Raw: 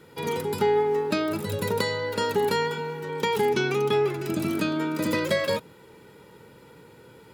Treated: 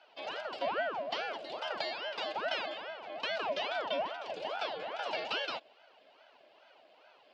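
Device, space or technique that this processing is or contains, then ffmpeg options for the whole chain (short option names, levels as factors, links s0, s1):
voice changer toy: -af "aeval=exprs='val(0)*sin(2*PI*630*n/s+630*0.8/2.4*sin(2*PI*2.4*n/s))':c=same,highpass=570,equalizer=f=630:t=q:w=4:g=6,equalizer=f=1200:t=q:w=4:g=-8,equalizer=f=1900:t=q:w=4:g=-4,equalizer=f=2900:t=q:w=4:g=8,equalizer=f=4700:t=q:w=4:g=4,lowpass=f=4800:w=0.5412,lowpass=f=4800:w=1.3066,volume=0.473"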